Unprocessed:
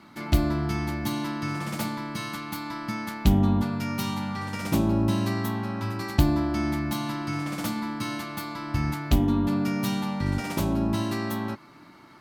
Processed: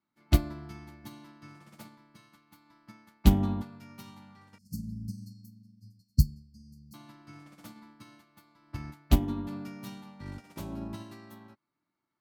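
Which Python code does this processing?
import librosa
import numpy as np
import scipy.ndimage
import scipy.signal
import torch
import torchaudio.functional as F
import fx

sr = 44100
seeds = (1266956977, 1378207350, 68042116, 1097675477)

y = fx.brickwall_bandstop(x, sr, low_hz=260.0, high_hz=4200.0, at=(4.58, 6.94))
y = fx.upward_expand(y, sr, threshold_db=-39.0, expansion=2.5)
y = y * 10.0 ** (2.0 / 20.0)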